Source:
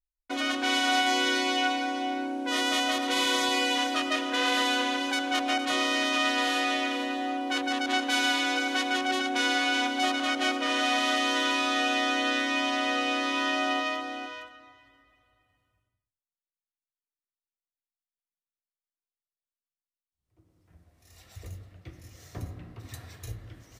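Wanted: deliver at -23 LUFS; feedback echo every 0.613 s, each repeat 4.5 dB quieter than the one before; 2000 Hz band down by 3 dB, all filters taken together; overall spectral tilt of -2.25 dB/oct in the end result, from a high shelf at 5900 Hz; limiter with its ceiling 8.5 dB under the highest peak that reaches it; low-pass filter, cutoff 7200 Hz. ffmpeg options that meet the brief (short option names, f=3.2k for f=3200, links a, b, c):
-af "lowpass=7.2k,equalizer=f=2k:t=o:g=-4.5,highshelf=f=5.9k:g=3.5,alimiter=limit=-21dB:level=0:latency=1,aecho=1:1:613|1226|1839|2452|3065|3678|4291|4904|5517:0.596|0.357|0.214|0.129|0.0772|0.0463|0.0278|0.0167|0.01,volume=6dB"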